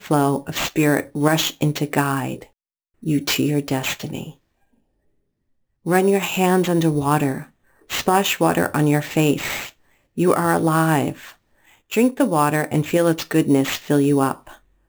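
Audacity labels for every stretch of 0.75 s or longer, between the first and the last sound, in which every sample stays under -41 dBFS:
4.320000	5.860000	silence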